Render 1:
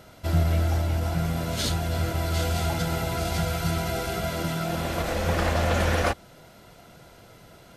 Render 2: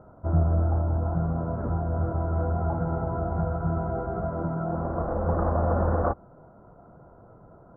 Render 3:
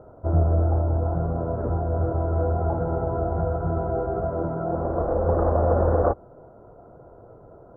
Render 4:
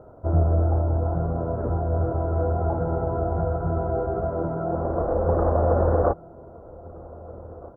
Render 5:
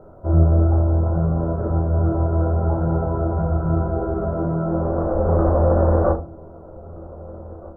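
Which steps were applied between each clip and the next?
steep low-pass 1300 Hz 48 dB/oct
EQ curve 120 Hz 0 dB, 180 Hz -6 dB, 440 Hz +6 dB, 1100 Hz -3 dB; gain +2.5 dB
outdoor echo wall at 270 m, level -20 dB
shoebox room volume 120 m³, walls furnished, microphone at 1.1 m

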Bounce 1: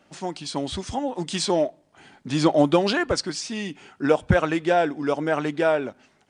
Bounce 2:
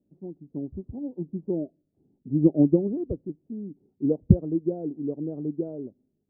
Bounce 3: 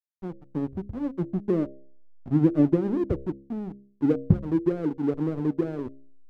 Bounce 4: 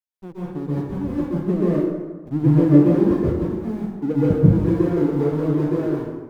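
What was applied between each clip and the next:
inverse Chebyshev low-pass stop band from 2300 Hz, stop band 80 dB; upward expander 1.5:1, over -41 dBFS; gain +4.5 dB
compressor 2.5:1, threshold -24 dBFS, peak gain reduction 10.5 dB; backlash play -33.5 dBFS; de-hum 67.63 Hz, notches 9; gain +6 dB
in parallel at -11.5 dB: sample gate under -35 dBFS; on the sum: plate-style reverb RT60 1.3 s, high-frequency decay 0.6×, pre-delay 0.115 s, DRR -8.5 dB; gain -4 dB

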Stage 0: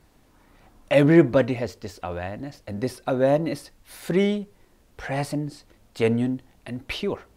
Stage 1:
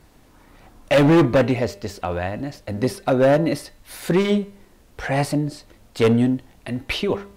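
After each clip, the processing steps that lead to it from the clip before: overloaded stage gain 17 dB; de-hum 200 Hz, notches 21; gain +6 dB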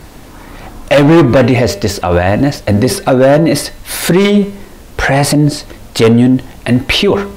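maximiser +19.5 dB; gain -1 dB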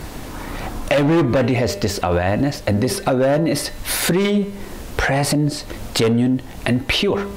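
compressor 2.5:1, threshold -23 dBFS, peak gain reduction 12 dB; gain +2.5 dB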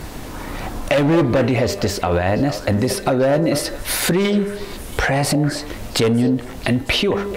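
delay with a stepping band-pass 0.226 s, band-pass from 520 Hz, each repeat 1.4 oct, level -8 dB

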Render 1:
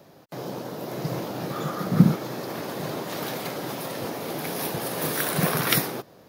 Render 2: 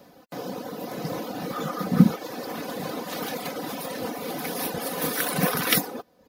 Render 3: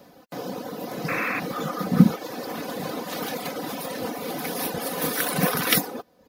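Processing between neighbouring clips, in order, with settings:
reverb removal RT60 0.66 s; comb 4 ms, depth 61%
painted sound noise, 1.08–1.4, 1000–2700 Hz -29 dBFS; gain +1 dB

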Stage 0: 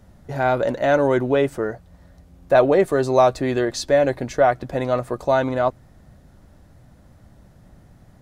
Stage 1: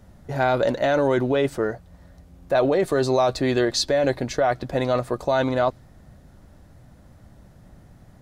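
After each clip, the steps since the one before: dynamic EQ 4200 Hz, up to +7 dB, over -47 dBFS, Q 1.6; in parallel at -1 dB: negative-ratio compressor -19 dBFS, ratio -0.5; on the sum: gain -6.5 dB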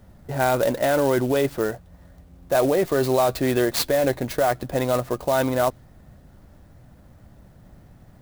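clock jitter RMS 0.035 ms

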